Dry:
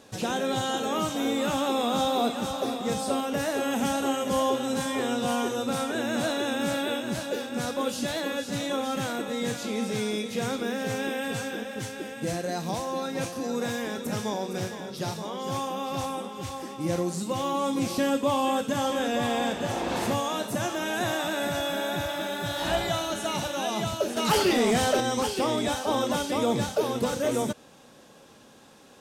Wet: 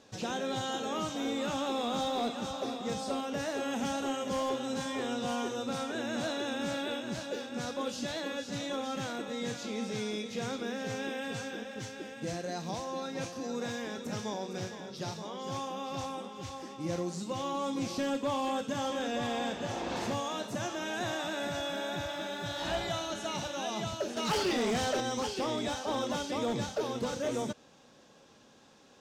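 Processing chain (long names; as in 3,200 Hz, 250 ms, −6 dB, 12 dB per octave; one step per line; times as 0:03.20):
high shelf with overshoot 8,000 Hz −8.5 dB, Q 1.5
hard clipping −19.5 dBFS, distortion −22 dB
level −6.5 dB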